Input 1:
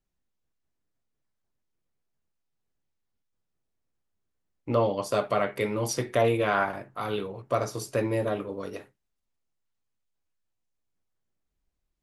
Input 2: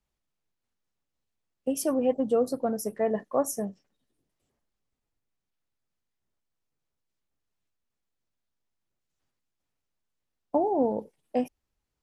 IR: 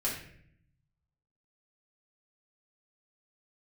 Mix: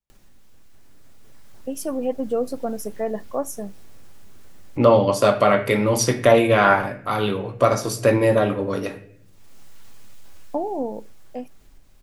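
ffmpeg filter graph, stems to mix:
-filter_complex "[0:a]acompressor=mode=upward:threshold=-36dB:ratio=2.5,adelay=100,volume=1dB,asplit=2[link_01][link_02];[link_02]volume=-11.5dB[link_03];[1:a]volume=-8.5dB,asplit=2[link_04][link_05];[link_05]apad=whole_len=534893[link_06];[link_01][link_06]sidechaincompress=threshold=-35dB:ratio=8:attack=16:release=223[link_07];[2:a]atrim=start_sample=2205[link_08];[link_03][link_08]afir=irnorm=-1:irlink=0[link_09];[link_07][link_04][link_09]amix=inputs=3:normalize=0,dynaudnorm=framelen=290:gausssize=11:maxgain=10dB"

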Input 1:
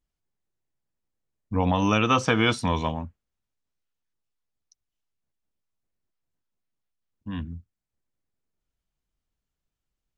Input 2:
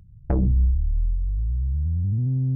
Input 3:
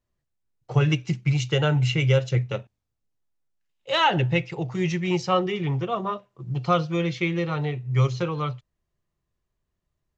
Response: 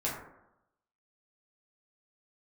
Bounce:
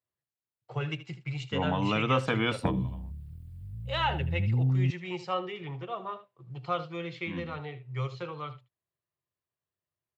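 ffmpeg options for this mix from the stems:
-filter_complex "[0:a]volume=-6.5dB,asplit=2[link_01][link_02];[link_02]volume=-21dB[link_03];[1:a]acompressor=threshold=-22dB:ratio=12,acrusher=bits=11:mix=0:aa=0.000001,adelay=2350,volume=0.5dB[link_04];[2:a]equalizer=frequency=210:width=1.1:gain=-10,volume=-8dB,asplit=3[link_05][link_06][link_07];[link_06]volume=-14dB[link_08];[link_07]apad=whole_len=448935[link_09];[link_01][link_09]sidechaingate=range=-19dB:threshold=-52dB:ratio=16:detection=peak[link_10];[link_03][link_08]amix=inputs=2:normalize=0,aecho=0:1:77:1[link_11];[link_10][link_04][link_05][link_11]amix=inputs=4:normalize=0,highpass=frequency=100:width=0.5412,highpass=frequency=100:width=1.3066,equalizer=frequency=6100:width_type=o:width=0.43:gain=-12.5"

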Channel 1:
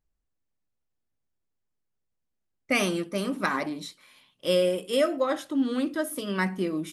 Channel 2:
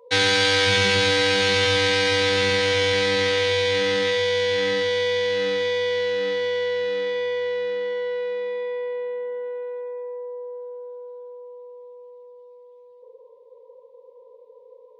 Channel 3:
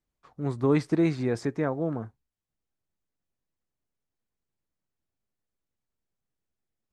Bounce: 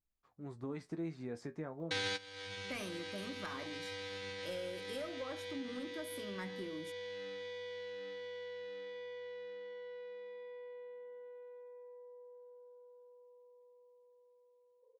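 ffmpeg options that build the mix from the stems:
ffmpeg -i stem1.wav -i stem2.wav -i stem3.wav -filter_complex "[0:a]asoftclip=type=tanh:threshold=-18.5dB,volume=-11dB[link_01];[1:a]alimiter=limit=-12dB:level=0:latency=1:release=96,adelay=1800,volume=0dB[link_02];[2:a]dynaudnorm=framelen=110:gausssize=13:maxgain=7dB,flanger=delay=9.4:depth=3.2:regen=55:speed=0.35:shape=sinusoidal,volume=-12.5dB,asplit=2[link_03][link_04];[link_04]apad=whole_len=740726[link_05];[link_02][link_05]sidechaingate=range=-21dB:threshold=-58dB:ratio=16:detection=peak[link_06];[link_01][link_06][link_03]amix=inputs=3:normalize=0,acompressor=threshold=-42dB:ratio=2.5" out.wav

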